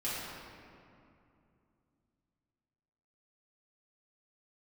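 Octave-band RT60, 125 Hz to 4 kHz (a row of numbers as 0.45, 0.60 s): 3.7, 3.5, 2.7, 2.5, 2.1, 1.4 s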